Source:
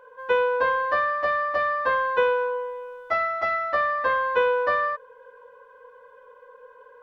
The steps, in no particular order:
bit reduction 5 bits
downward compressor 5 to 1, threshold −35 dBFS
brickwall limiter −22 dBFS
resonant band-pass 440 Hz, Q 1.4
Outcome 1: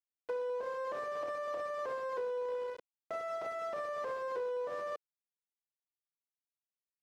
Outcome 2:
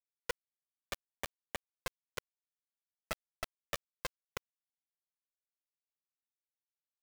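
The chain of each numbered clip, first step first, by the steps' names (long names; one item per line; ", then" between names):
brickwall limiter, then bit reduction, then resonant band-pass, then downward compressor
resonant band-pass, then brickwall limiter, then downward compressor, then bit reduction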